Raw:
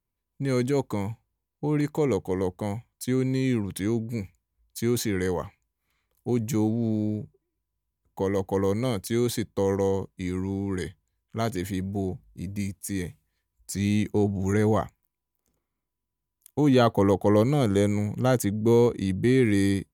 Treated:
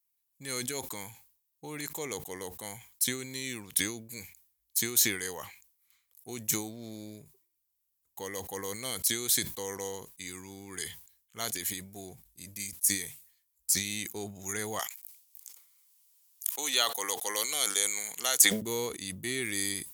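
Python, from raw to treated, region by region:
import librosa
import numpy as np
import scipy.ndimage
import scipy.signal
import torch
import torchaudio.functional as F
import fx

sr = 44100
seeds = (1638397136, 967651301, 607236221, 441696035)

y = fx.chain(x, sr, fx.bessel_highpass(hz=570.0, order=2),
    fx.peak_eq(hz=5700.0, db=7.0, octaves=2.8),
    fx.band_squash(depth_pct=40), at=(14.79, 18.62))
y = scipy.signal.lfilter([1.0, -0.97], [1.0], y)
y = fx.sustainer(y, sr, db_per_s=100.0)
y = F.gain(torch.from_numpy(y), 8.5).numpy()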